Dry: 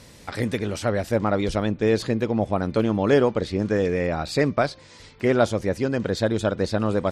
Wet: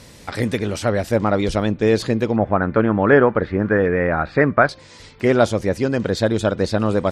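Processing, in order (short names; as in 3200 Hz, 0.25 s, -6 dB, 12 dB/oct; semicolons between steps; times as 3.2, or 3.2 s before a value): 2.36–4.69 synth low-pass 1600 Hz, resonance Q 2.7; gain +4 dB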